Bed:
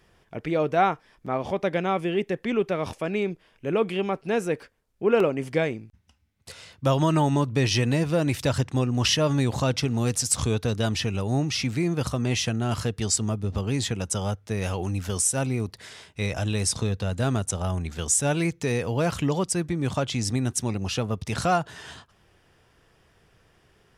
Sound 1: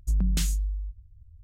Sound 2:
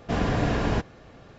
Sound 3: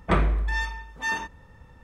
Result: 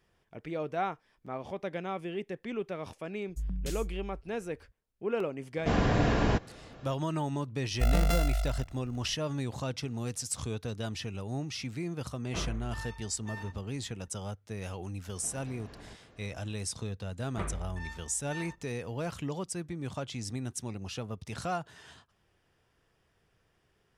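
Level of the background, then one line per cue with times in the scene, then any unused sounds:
bed -11 dB
3.29 s: add 1 -10.5 dB
5.57 s: add 2 -1.5 dB
7.73 s: add 1 -1.5 dB + sorted samples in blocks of 64 samples
12.25 s: add 3 -14 dB + slew-rate limiter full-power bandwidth 65 Hz
15.15 s: add 2 -10 dB + compression 10:1, threshold -36 dBFS
17.28 s: add 3 -15.5 dB

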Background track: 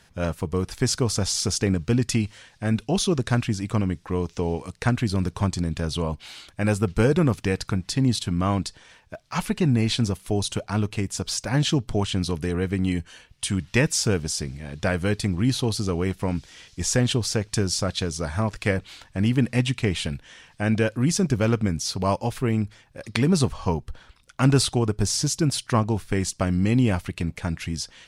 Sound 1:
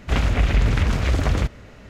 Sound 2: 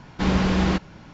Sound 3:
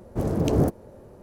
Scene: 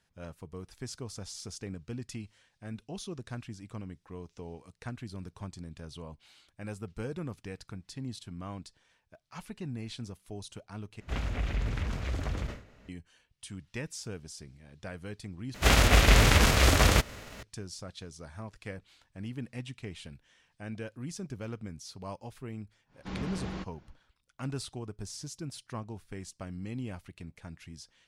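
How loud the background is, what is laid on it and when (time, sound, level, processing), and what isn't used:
background track -18 dB
11.00 s: replace with 1 -13.5 dB + decay stretcher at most 120 dB/s
15.54 s: replace with 1 -2.5 dB + formants flattened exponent 0.6
22.86 s: add 2 -17 dB, fades 0.10 s
not used: 3

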